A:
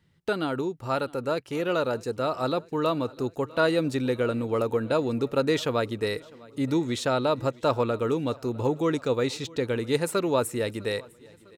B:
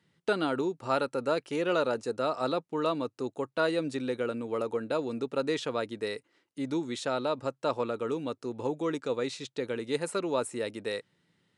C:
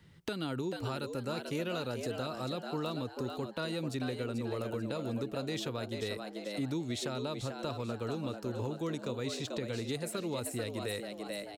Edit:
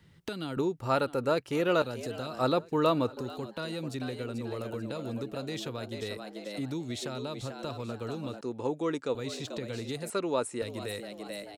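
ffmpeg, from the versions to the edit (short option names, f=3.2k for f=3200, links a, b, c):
-filter_complex "[0:a]asplit=2[a][b];[1:a]asplit=2[c][d];[2:a]asplit=5[e][f][g][h][i];[e]atrim=end=0.572[j];[a]atrim=start=0.568:end=1.822[k];[f]atrim=start=1.818:end=2.392[l];[b]atrim=start=2.388:end=3.172[m];[g]atrim=start=3.168:end=8.412[n];[c]atrim=start=8.408:end=9.152[o];[h]atrim=start=9.148:end=10.102[p];[d]atrim=start=10.098:end=10.622[q];[i]atrim=start=10.618[r];[j][k]acrossfade=d=0.004:c1=hsin:c2=hsin[s];[s][l]acrossfade=d=0.004:c1=hsin:c2=hsin[t];[t][m]acrossfade=d=0.004:c1=hsin:c2=hsin[u];[u][n]acrossfade=d=0.004:c1=hsin:c2=hsin[v];[v][o]acrossfade=d=0.004:c1=hsin:c2=hsin[w];[w][p]acrossfade=d=0.004:c1=hsin:c2=hsin[x];[x][q]acrossfade=d=0.004:c1=hsin:c2=hsin[y];[y][r]acrossfade=d=0.004:c1=hsin:c2=hsin"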